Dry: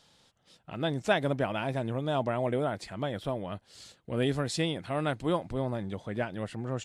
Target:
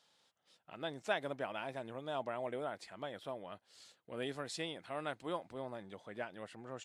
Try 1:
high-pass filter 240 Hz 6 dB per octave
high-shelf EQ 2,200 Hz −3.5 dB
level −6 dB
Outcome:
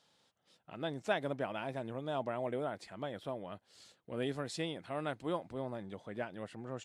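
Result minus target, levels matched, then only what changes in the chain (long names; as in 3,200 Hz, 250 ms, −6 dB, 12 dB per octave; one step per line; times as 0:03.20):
250 Hz band +3.0 dB
change: high-pass filter 650 Hz 6 dB per octave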